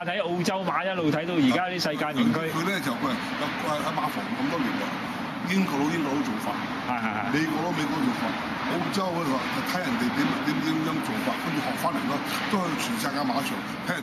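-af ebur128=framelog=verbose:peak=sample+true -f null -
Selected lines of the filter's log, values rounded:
Integrated loudness:
  I:         -26.8 LUFS
  Threshold: -36.8 LUFS
Loudness range:
  LRA:         1.8 LU
  Threshold: -46.9 LUFS
  LRA low:   -27.6 LUFS
  LRA high:  -25.8 LUFS
Sample peak:
  Peak:      -10.9 dBFS
True peak:
  Peak:      -10.9 dBFS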